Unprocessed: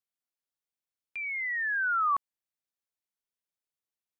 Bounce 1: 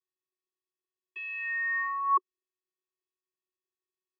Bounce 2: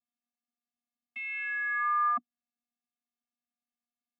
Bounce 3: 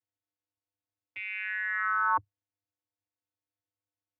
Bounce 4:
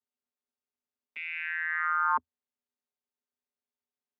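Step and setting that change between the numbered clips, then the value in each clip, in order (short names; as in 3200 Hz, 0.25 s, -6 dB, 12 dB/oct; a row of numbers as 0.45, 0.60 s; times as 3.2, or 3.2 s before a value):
vocoder, frequency: 370, 240, 100, 82 Hz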